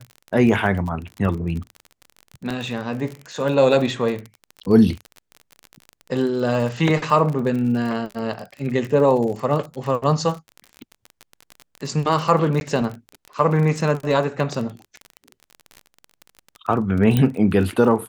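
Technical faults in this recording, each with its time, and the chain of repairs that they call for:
crackle 36 per s -27 dBFS
2.50–2.51 s: dropout 5.2 ms
8.34 s: dropout 2 ms
12.60–12.61 s: dropout 11 ms
17.17 s: pop -7 dBFS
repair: de-click; interpolate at 2.50 s, 5.2 ms; interpolate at 8.34 s, 2 ms; interpolate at 12.60 s, 11 ms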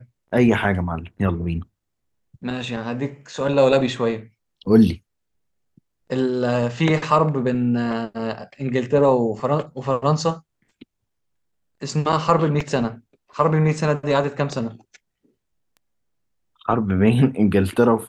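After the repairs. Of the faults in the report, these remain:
nothing left

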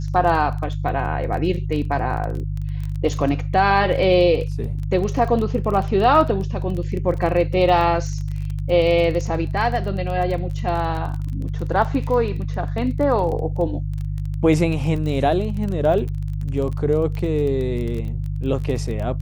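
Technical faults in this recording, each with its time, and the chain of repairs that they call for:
crackle 21 per s -26 dBFS
hum 50 Hz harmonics 3 -25 dBFS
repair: de-click; de-hum 50 Hz, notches 3

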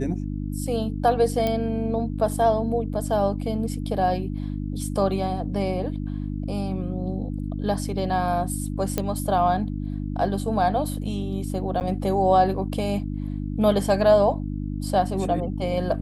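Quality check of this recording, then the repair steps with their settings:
hum 50 Hz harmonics 6 -29 dBFS
1.47 s: pop -12 dBFS
8.98 s: pop -9 dBFS
11.80–11.81 s: dropout 9.5 ms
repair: de-click; de-hum 50 Hz, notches 6; interpolate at 11.80 s, 9.5 ms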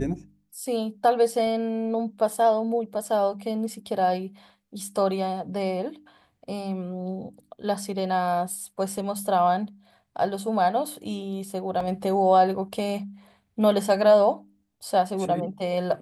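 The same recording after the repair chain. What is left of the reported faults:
nothing left

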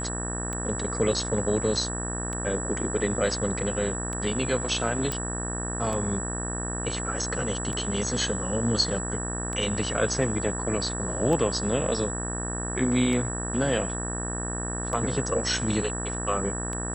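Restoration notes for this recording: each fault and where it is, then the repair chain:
buzz 60 Hz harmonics 31 -33 dBFS
tick 33 1/3 rpm -19 dBFS
whine 7.8 kHz -33 dBFS
5.12 s: pop -13 dBFS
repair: de-click; de-hum 60 Hz, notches 31; band-stop 7.8 kHz, Q 30

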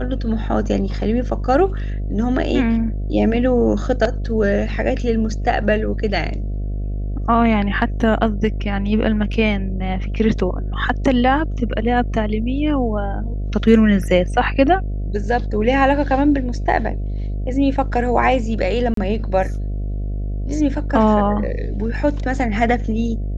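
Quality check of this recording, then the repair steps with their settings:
buzz 50 Hz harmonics 14 -23 dBFS
18.94–18.97 s: dropout 33 ms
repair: de-hum 50 Hz, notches 14; interpolate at 18.94 s, 33 ms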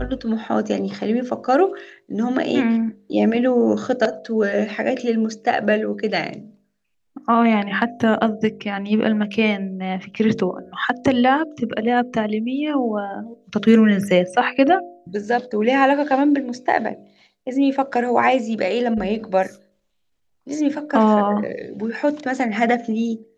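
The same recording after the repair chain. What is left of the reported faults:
nothing left

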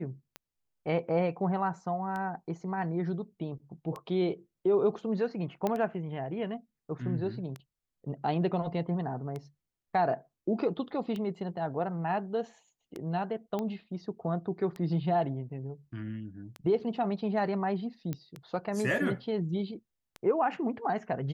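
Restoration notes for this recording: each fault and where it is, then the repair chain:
tick 33 1/3 rpm -25 dBFS
5.67 s: pop -17 dBFS
13.59 s: pop -21 dBFS
18.13 s: pop -21 dBFS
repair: de-click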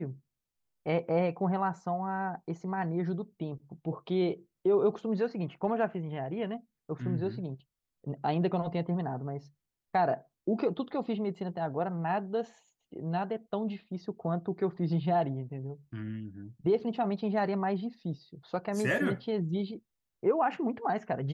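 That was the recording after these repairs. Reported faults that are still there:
13.59 s: pop

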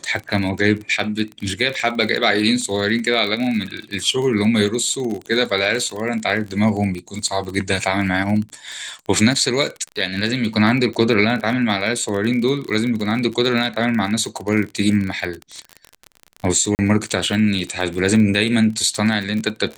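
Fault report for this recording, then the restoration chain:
crackle 35 per s -24 dBFS
16.75–16.79 s: dropout 39 ms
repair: de-click; interpolate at 16.75 s, 39 ms

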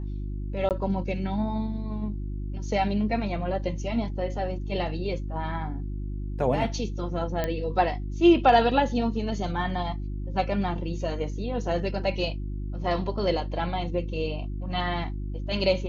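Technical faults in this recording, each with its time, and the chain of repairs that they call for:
hum 50 Hz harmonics 7 -32 dBFS
0.69–0.71 s: dropout 18 ms
7.44 s: pop -14 dBFS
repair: de-click; de-hum 50 Hz, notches 7; interpolate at 0.69 s, 18 ms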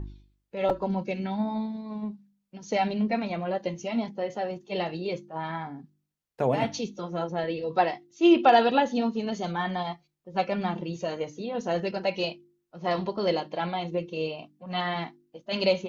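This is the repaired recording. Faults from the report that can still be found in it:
nothing left

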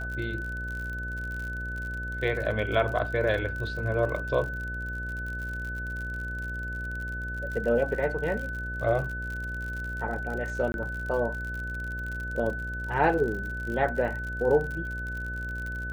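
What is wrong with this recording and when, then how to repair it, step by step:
buzz 60 Hz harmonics 11 -36 dBFS
crackle 52 per s -34 dBFS
whine 1.5 kHz -34 dBFS
10.72–10.74 s: dropout 21 ms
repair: de-click; de-hum 60 Hz, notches 11; band-stop 1.5 kHz, Q 30; interpolate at 10.72 s, 21 ms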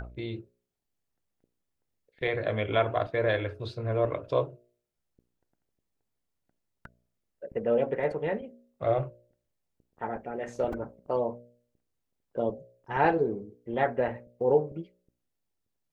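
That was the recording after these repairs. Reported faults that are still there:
nothing left

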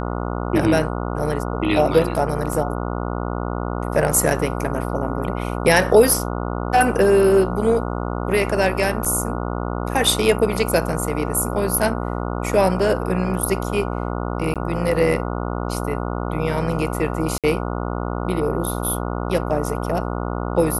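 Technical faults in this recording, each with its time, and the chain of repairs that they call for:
buzz 60 Hz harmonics 24 -25 dBFS
2.53 s: dropout 2.2 ms
9.05–9.06 s: dropout 5.9 ms
14.54–14.56 s: dropout 17 ms
17.38–17.44 s: dropout 57 ms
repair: de-hum 60 Hz, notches 24; interpolate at 2.53 s, 2.2 ms; interpolate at 9.05 s, 5.9 ms; interpolate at 14.54 s, 17 ms; interpolate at 17.38 s, 57 ms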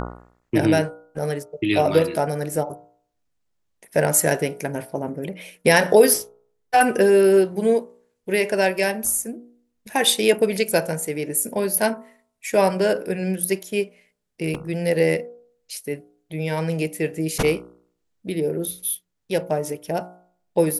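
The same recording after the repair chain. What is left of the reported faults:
nothing left

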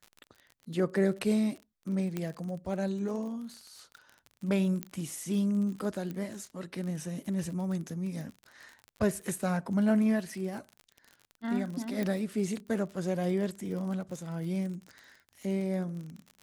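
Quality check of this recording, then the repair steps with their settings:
crackle 40 per s -38 dBFS
2.17 s: pop -20 dBFS
4.83 s: pop -18 dBFS
6.11 s: pop -25 dBFS
12.03 s: pop -20 dBFS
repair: de-click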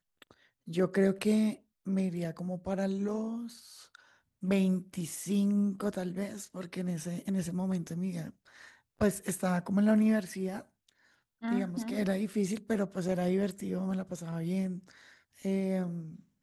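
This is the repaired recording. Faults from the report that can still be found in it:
2.17 s: pop
12.03 s: pop

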